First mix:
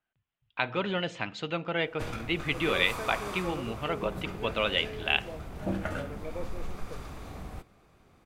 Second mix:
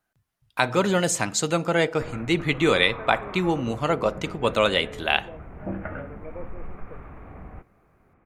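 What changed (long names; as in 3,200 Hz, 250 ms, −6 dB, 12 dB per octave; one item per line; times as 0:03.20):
speech: remove transistor ladder low-pass 3,500 Hz, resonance 50%
background: add Butterworth low-pass 2,300 Hz 36 dB per octave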